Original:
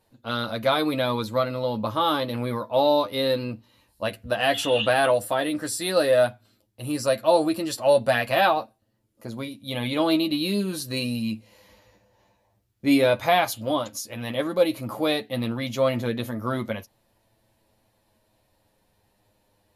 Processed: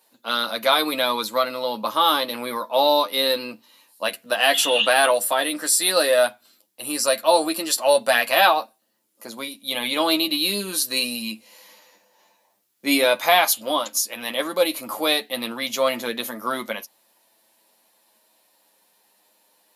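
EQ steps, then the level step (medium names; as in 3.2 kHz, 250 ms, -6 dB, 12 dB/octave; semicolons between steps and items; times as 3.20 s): high-pass 190 Hz 24 dB/octave; tilt EQ +3 dB/octave; peaking EQ 980 Hz +3 dB 0.77 oct; +2.5 dB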